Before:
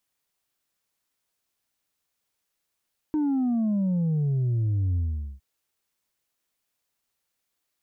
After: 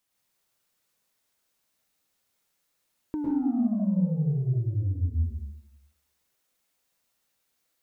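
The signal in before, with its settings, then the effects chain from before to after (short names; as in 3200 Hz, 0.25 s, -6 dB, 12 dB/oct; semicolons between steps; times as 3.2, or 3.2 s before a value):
sub drop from 310 Hz, over 2.26 s, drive 2.5 dB, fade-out 0.44 s, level -22 dB
compressor, threshold -30 dBFS; plate-style reverb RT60 0.76 s, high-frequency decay 0.85×, pre-delay 95 ms, DRR -2.5 dB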